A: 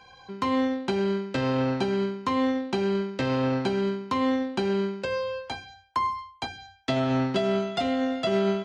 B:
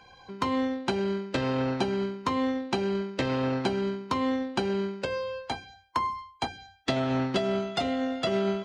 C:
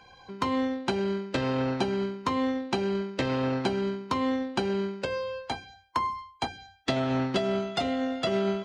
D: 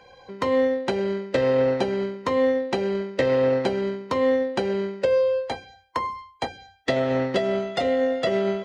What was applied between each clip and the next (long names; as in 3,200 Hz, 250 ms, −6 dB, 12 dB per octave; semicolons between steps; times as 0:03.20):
harmonic and percussive parts rebalanced harmonic −7 dB; level +4 dB
no processing that can be heard
hollow resonant body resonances 520/1,900 Hz, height 13 dB, ringing for 25 ms